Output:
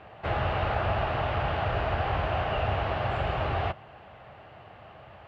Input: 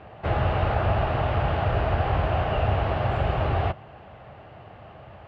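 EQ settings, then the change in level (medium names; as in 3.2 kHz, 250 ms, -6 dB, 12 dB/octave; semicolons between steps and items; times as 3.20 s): tilt shelf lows -3.5 dB, about 670 Hz; -3.0 dB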